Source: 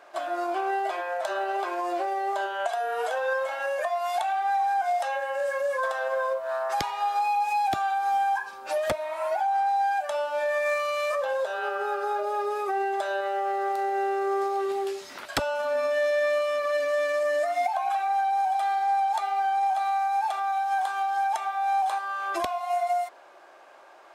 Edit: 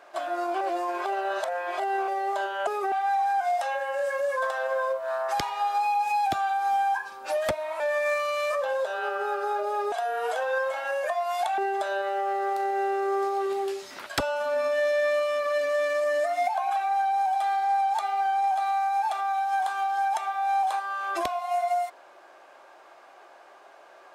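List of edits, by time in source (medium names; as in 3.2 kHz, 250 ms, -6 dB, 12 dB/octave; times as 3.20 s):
0.61–2.08 s: reverse
2.67–4.33 s: swap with 12.52–12.77 s
9.21–10.40 s: delete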